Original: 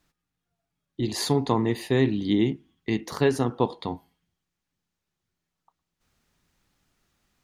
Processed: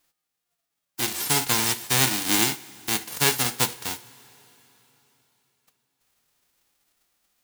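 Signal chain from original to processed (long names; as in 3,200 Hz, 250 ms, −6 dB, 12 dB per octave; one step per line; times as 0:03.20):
spectral envelope flattened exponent 0.1
coupled-rooms reverb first 0.28 s, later 3.8 s, from −18 dB, DRR 12.5 dB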